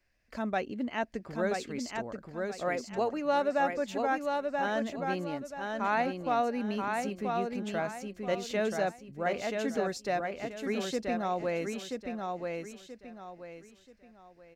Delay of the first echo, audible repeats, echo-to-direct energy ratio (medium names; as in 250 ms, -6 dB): 981 ms, 4, -3.5 dB